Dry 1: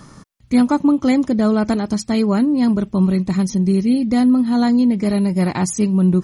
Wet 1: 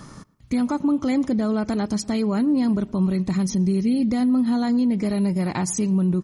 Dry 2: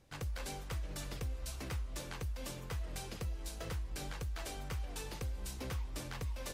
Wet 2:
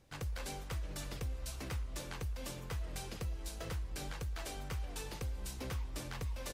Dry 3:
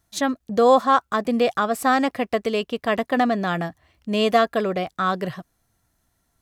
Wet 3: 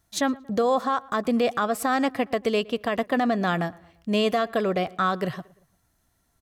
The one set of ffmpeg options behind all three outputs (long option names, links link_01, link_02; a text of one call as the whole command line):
ffmpeg -i in.wav -filter_complex "[0:a]alimiter=limit=-14.5dB:level=0:latency=1:release=112,asplit=2[link_01][link_02];[link_02]adelay=115,lowpass=frequency=2600:poles=1,volume=-22.5dB,asplit=2[link_03][link_04];[link_04]adelay=115,lowpass=frequency=2600:poles=1,volume=0.49,asplit=2[link_05][link_06];[link_06]adelay=115,lowpass=frequency=2600:poles=1,volume=0.49[link_07];[link_03][link_05][link_07]amix=inputs=3:normalize=0[link_08];[link_01][link_08]amix=inputs=2:normalize=0" out.wav